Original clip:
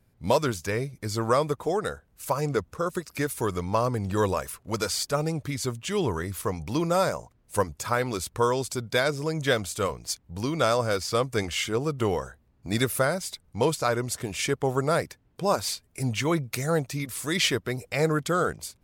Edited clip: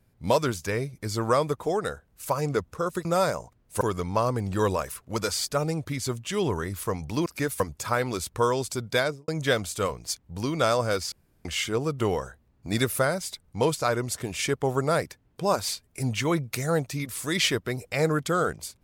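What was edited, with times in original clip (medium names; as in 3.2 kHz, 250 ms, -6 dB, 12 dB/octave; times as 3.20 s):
3.05–3.39 s: swap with 6.84–7.60 s
8.99–9.28 s: studio fade out
11.12–11.45 s: room tone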